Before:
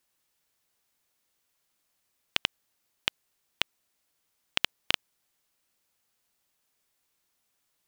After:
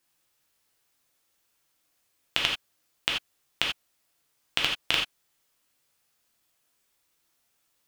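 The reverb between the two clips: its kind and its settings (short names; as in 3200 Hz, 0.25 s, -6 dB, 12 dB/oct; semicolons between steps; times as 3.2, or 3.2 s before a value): non-linear reverb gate 0.11 s flat, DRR -1.5 dB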